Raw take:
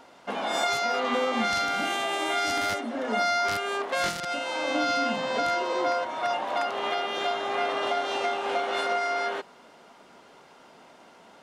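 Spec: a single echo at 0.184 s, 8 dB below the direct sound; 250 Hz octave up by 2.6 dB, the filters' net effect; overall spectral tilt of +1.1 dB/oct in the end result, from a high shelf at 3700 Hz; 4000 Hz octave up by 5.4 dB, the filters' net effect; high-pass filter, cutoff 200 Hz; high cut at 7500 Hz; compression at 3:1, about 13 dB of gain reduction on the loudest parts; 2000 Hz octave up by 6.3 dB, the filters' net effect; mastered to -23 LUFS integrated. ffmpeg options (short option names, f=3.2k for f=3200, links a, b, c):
-af "highpass=200,lowpass=7.5k,equalizer=f=250:t=o:g=4.5,equalizer=f=2k:t=o:g=7,highshelf=f=3.7k:g=-4,equalizer=f=4k:t=o:g=7,acompressor=threshold=-37dB:ratio=3,aecho=1:1:184:0.398,volume=11.5dB"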